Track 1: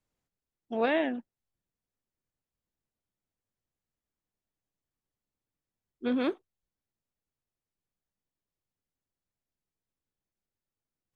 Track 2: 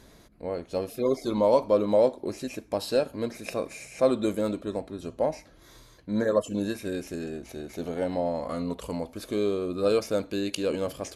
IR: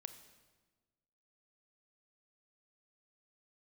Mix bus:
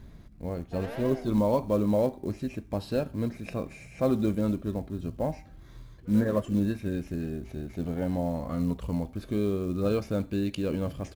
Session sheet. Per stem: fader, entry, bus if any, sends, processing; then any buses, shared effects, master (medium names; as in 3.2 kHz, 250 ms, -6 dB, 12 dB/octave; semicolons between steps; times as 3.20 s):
-1.5 dB, 0.00 s, no send, echo send -7.5 dB, high-order bell 530 Hz +13 dB; saturation -23.5 dBFS, distortion -6 dB; auto duck -18 dB, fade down 1.95 s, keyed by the second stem
+2.0 dB, 0.00 s, no send, no echo send, tone controls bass +14 dB, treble -10 dB; short-mantissa float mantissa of 4-bit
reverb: none
echo: feedback delay 89 ms, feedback 40%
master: peaking EQ 470 Hz -3 dB 0.98 oct; feedback comb 390 Hz, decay 0.6 s, mix 50%